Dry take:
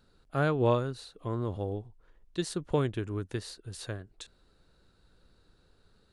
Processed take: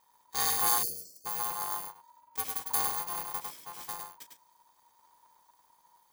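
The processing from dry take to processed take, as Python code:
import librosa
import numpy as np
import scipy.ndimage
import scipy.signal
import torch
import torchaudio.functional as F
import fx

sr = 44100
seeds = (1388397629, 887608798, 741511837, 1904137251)

p1 = fx.bit_reversed(x, sr, seeds[0], block=128)
p2 = p1 * np.sin(2.0 * np.pi * 950.0 * np.arange(len(p1)) / sr)
p3 = p2 + fx.echo_single(p2, sr, ms=102, db=-4.5, dry=0)
y = fx.spec_erase(p3, sr, start_s=0.83, length_s=0.43, low_hz=670.0, high_hz=4200.0)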